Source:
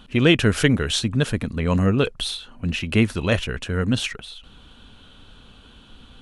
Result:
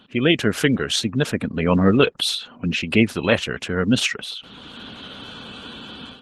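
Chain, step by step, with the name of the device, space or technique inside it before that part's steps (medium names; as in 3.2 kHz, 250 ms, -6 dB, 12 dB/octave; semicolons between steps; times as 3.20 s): noise-suppressed video call (high-pass 160 Hz 12 dB/octave; spectral gate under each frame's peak -30 dB strong; level rider gain up to 15 dB; trim -1 dB; Opus 16 kbps 48 kHz)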